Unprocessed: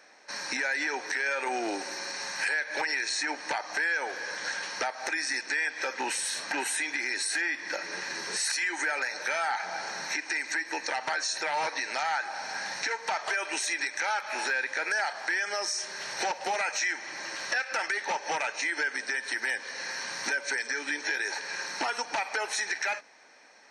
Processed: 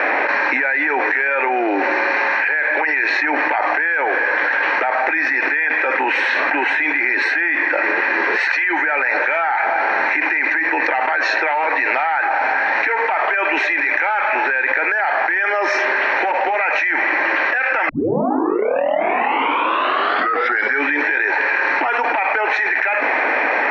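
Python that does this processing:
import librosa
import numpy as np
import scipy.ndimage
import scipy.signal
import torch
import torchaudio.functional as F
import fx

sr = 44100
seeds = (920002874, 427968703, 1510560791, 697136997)

y = fx.edit(x, sr, fx.tape_start(start_s=17.89, length_s=2.95), tone=tone)
y = scipy.signal.sosfilt(scipy.signal.ellip(3, 1.0, 60, [280.0, 2400.0], 'bandpass', fs=sr, output='sos'), y)
y = fx.env_flatten(y, sr, amount_pct=100)
y = y * librosa.db_to_amplitude(9.0)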